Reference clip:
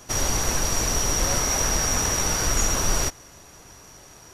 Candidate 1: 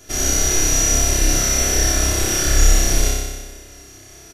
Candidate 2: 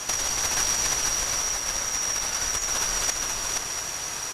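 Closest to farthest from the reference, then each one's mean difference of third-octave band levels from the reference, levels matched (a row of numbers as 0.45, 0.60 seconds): 1, 2; 4.0, 8.0 decibels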